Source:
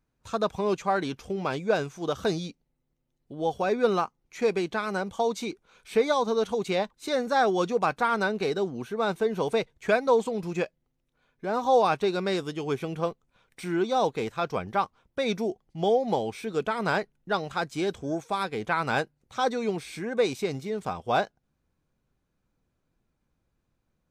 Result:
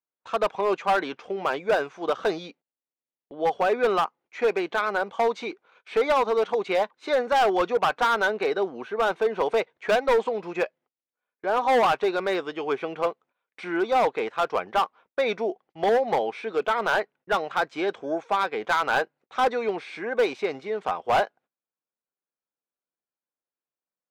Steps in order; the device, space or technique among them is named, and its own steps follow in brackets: walkie-talkie (band-pass 480–2500 Hz; hard clipper -23.5 dBFS, distortion -10 dB; gate -59 dBFS, range -22 dB); trim +7 dB

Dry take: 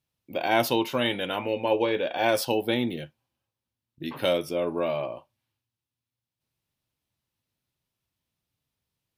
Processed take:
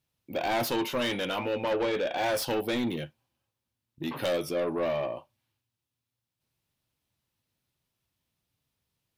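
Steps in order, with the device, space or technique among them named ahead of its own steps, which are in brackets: saturation between pre-emphasis and de-emphasis (treble shelf 4.5 kHz +6.5 dB; saturation -25.5 dBFS, distortion -8 dB; treble shelf 4.5 kHz -6.5 dB); trim +2 dB

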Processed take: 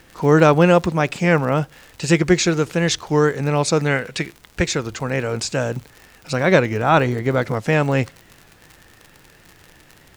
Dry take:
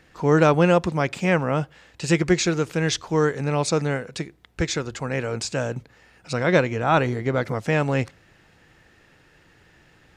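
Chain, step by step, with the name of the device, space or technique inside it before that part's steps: warped LP (warped record 33 1/3 rpm, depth 100 cents; crackle 77 per s -34 dBFS; pink noise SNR 36 dB); 3.85–4.62 s: dynamic bell 2.3 kHz, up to +8 dB, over -45 dBFS, Q 0.93; trim +4 dB

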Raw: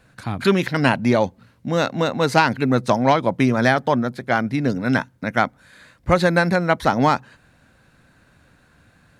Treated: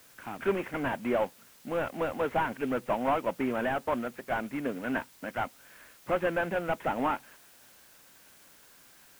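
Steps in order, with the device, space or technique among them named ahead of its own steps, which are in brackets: army field radio (band-pass 320–3400 Hz; CVSD coder 16 kbps; white noise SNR 25 dB); trim -6.5 dB

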